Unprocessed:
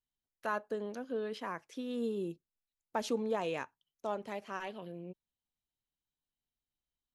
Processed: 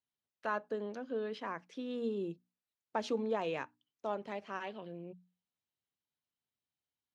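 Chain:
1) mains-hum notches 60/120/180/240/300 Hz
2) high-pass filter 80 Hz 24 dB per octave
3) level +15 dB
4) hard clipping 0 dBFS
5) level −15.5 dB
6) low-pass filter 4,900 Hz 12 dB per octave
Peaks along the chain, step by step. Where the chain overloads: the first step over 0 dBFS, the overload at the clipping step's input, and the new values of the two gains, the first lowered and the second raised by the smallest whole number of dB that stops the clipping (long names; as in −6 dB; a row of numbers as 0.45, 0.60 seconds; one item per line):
−20.5, −20.5, −5.5, −5.5, −21.0, −21.0 dBFS
no step passes full scale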